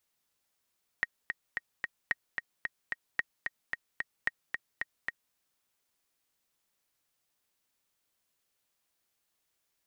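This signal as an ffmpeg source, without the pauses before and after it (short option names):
-f lavfi -i "aevalsrc='pow(10,(-14.5-5*gte(mod(t,4*60/222),60/222))/20)*sin(2*PI*1880*mod(t,60/222))*exp(-6.91*mod(t,60/222)/0.03)':d=4.32:s=44100"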